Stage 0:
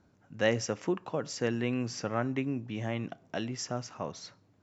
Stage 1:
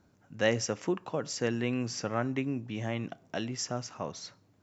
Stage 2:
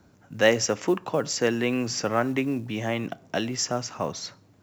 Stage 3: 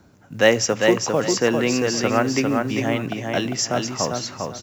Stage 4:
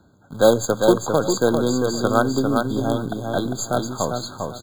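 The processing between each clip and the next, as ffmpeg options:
ffmpeg -i in.wav -af "highshelf=frequency=5700:gain=5.5" out.wav
ffmpeg -i in.wav -filter_complex "[0:a]acrossover=split=230|1600[link_01][link_02][link_03];[link_01]alimiter=level_in=15.5dB:limit=-24dB:level=0:latency=1:release=47,volume=-15.5dB[link_04];[link_04][link_02][link_03]amix=inputs=3:normalize=0,acrusher=bits=8:mode=log:mix=0:aa=0.000001,volume=8dB" out.wav
ffmpeg -i in.wav -af "areverse,acompressor=mode=upward:threshold=-40dB:ratio=2.5,areverse,aecho=1:1:400|800|1200:0.631|0.158|0.0394,volume=4dB" out.wav
ffmpeg -i in.wav -filter_complex "[0:a]asplit=2[link_01][link_02];[link_02]acrusher=bits=3:dc=4:mix=0:aa=0.000001,volume=-4dB[link_03];[link_01][link_03]amix=inputs=2:normalize=0,afftfilt=real='re*eq(mod(floor(b*sr/1024/1600),2),0)':imag='im*eq(mod(floor(b*sr/1024/1600),2),0)':win_size=1024:overlap=0.75,volume=-2dB" out.wav

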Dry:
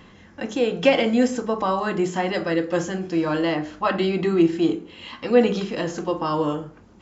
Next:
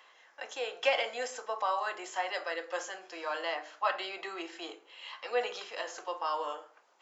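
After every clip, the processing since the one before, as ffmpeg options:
ffmpeg -i in.wav -af "highpass=frequency=610:width=0.5412,highpass=frequency=610:width=1.3066,volume=-6.5dB" out.wav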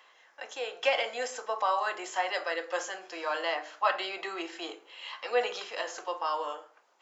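ffmpeg -i in.wav -af "dynaudnorm=framelen=250:gausssize=9:maxgain=3.5dB" out.wav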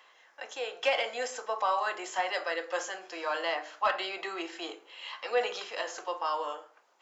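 ffmpeg -i in.wav -af "asoftclip=type=tanh:threshold=-15dB" out.wav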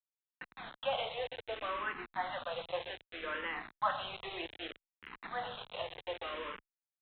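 ffmpeg -i in.wav -filter_complex "[0:a]aecho=1:1:122|244|366:0.224|0.0582|0.0151,aresample=8000,acrusher=bits=5:mix=0:aa=0.000001,aresample=44100,asplit=2[link_01][link_02];[link_02]afreqshift=-0.64[link_03];[link_01][link_03]amix=inputs=2:normalize=1,volume=-3.5dB" out.wav

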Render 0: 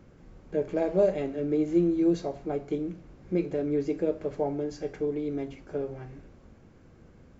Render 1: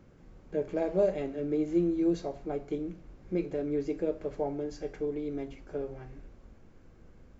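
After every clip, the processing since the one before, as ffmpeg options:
ffmpeg -i in.wav -af "asubboost=boost=3:cutoff=57,volume=-3dB" out.wav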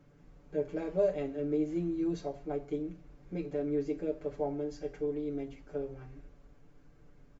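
ffmpeg -i in.wav -af "aecho=1:1:6.9:0.88,volume=-6dB" out.wav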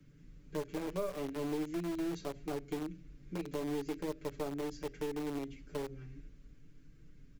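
ffmpeg -i in.wav -filter_complex "[0:a]acrossover=split=390|1500[link_01][link_02][link_03];[link_02]acrusher=bits=4:dc=4:mix=0:aa=0.000001[link_04];[link_01][link_04][link_03]amix=inputs=3:normalize=0,acrossover=split=240|850[link_05][link_06][link_07];[link_05]acompressor=threshold=-47dB:ratio=4[link_08];[link_06]acompressor=threshold=-38dB:ratio=4[link_09];[link_07]acompressor=threshold=-49dB:ratio=4[link_10];[link_08][link_09][link_10]amix=inputs=3:normalize=0,volume=2dB" out.wav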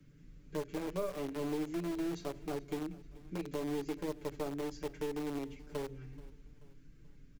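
ffmpeg -i in.wav -af "aecho=1:1:432|864|1296:0.0891|0.0419|0.0197" out.wav

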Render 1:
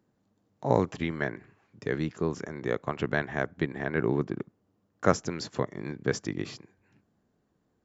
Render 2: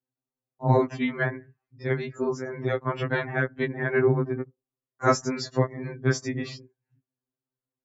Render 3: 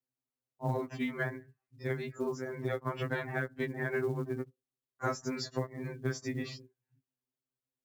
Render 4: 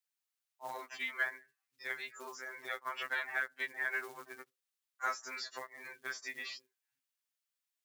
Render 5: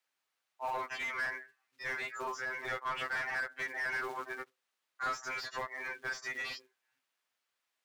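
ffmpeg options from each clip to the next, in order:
ffmpeg -i in.wav -af "afftdn=noise_reduction=25:noise_floor=-49,afftfilt=real='re*2.45*eq(mod(b,6),0)':imag='im*2.45*eq(mod(b,6),0)':win_size=2048:overlap=0.75,volume=6.5dB" out.wav
ffmpeg -i in.wav -af "acompressor=threshold=-24dB:ratio=8,acrusher=bits=8:mode=log:mix=0:aa=0.000001,volume=-5dB" out.wav
ffmpeg -i in.wav -filter_complex "[0:a]highpass=1400,acrossover=split=3700[link_01][link_02];[link_02]acompressor=threshold=-53dB:ratio=4:attack=1:release=60[link_03];[link_01][link_03]amix=inputs=2:normalize=0,volume=5dB" out.wav
ffmpeg -i in.wav -filter_complex "[0:a]asplit=2[link_01][link_02];[link_02]highpass=frequency=720:poles=1,volume=26dB,asoftclip=type=tanh:threshold=-21dB[link_03];[link_01][link_03]amix=inputs=2:normalize=0,lowpass=frequency=1300:poles=1,volume=-6dB,volume=-3.5dB" out.wav

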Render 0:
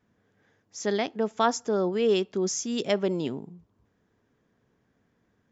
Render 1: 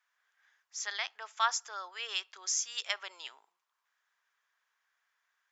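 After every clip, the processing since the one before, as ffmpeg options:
ffmpeg -i in.wav -af "highpass=frequency=1100:width=0.5412,highpass=frequency=1100:width=1.3066" out.wav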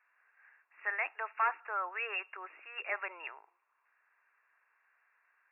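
ffmpeg -i in.wav -af "asoftclip=type=tanh:threshold=-32dB,afftfilt=real='re*between(b*sr/4096,280,2800)':imag='im*between(b*sr/4096,280,2800)':win_size=4096:overlap=0.75,volume=7.5dB" out.wav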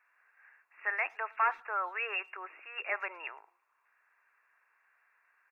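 ffmpeg -i in.wav -filter_complex "[0:a]asplit=2[link_01][link_02];[link_02]adelay=110,highpass=300,lowpass=3400,asoftclip=type=hard:threshold=-31.5dB,volume=-27dB[link_03];[link_01][link_03]amix=inputs=2:normalize=0,volume=2dB" out.wav

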